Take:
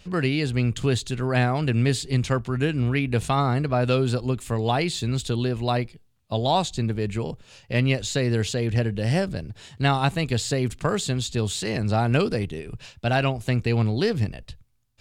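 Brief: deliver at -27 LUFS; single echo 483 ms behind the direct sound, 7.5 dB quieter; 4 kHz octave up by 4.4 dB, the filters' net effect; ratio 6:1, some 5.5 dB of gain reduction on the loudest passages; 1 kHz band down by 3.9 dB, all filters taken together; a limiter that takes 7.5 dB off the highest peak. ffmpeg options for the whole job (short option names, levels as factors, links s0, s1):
-af "equalizer=f=1000:t=o:g=-6,equalizer=f=4000:t=o:g=5.5,acompressor=threshold=0.0708:ratio=6,alimiter=limit=0.1:level=0:latency=1,aecho=1:1:483:0.422,volume=1.33"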